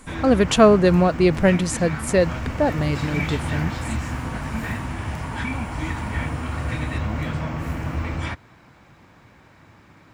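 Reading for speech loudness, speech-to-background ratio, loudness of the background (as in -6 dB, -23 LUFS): -19.5 LUFS, 9.0 dB, -28.5 LUFS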